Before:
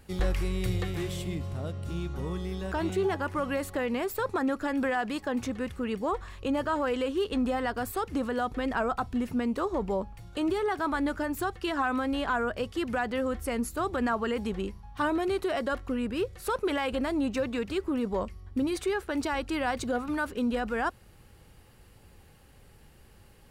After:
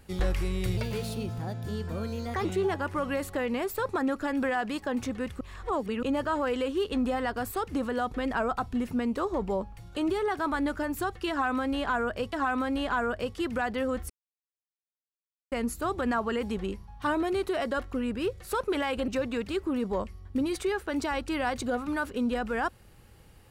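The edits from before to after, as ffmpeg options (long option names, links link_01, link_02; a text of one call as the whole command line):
ffmpeg -i in.wav -filter_complex "[0:a]asplit=8[link_01][link_02][link_03][link_04][link_05][link_06][link_07][link_08];[link_01]atrim=end=0.774[link_09];[link_02]atrim=start=0.77:end=2.85,asetpts=PTS-STARTPTS,asetrate=54684,aresample=44100,atrim=end_sample=73974,asetpts=PTS-STARTPTS[link_10];[link_03]atrim=start=2.846:end=5.812[link_11];[link_04]atrim=start=5.808:end=6.432,asetpts=PTS-STARTPTS,areverse[link_12];[link_05]atrim=start=6.428:end=12.732[link_13];[link_06]atrim=start=11.698:end=13.47,asetpts=PTS-STARTPTS,afade=type=out:start_time=1.768:duration=0.004:curve=hsin,apad=pad_dur=1.42[link_14];[link_07]atrim=start=13.47:end=17.032,asetpts=PTS-STARTPTS,afade=type=in:duration=0.004:curve=hsin[link_15];[link_08]atrim=start=17.288[link_16];[link_09][link_10]acrossfade=duration=0.004:curve1=hsin:curve2=hsin[link_17];[link_17][link_11]acrossfade=duration=0.004:curve1=hsin:curve2=hsin[link_18];[link_18][link_12]acrossfade=duration=0.004:curve1=hsin:curve2=hsin[link_19];[link_19][link_13]acrossfade=duration=0.004:curve1=hsin:curve2=hsin[link_20];[link_14][link_15]concat=n=2:v=0:a=1[link_21];[link_20][link_21]acrossfade=duration=0.004:curve1=hsin:curve2=hsin[link_22];[link_22][link_16]acrossfade=duration=0.004:curve1=hsin:curve2=hsin" out.wav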